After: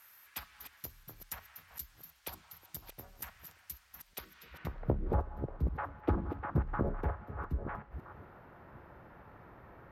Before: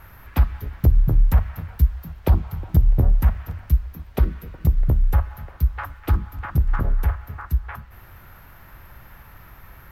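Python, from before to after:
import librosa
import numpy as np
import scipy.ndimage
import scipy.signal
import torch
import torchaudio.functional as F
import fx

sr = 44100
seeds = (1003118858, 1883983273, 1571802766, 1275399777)

y = fx.reverse_delay(x, sr, ms=517, wet_db=-9.5)
y = fx.filter_sweep_bandpass(y, sr, from_hz=7800.0, to_hz=420.0, start_s=4.3, end_s=4.97, q=1.0)
y = fx.dynamic_eq(y, sr, hz=2100.0, q=1.1, threshold_db=-58.0, ratio=4.0, max_db=-6, at=(4.94, 5.64))
y = y * librosa.db_to_amplitude(1.0)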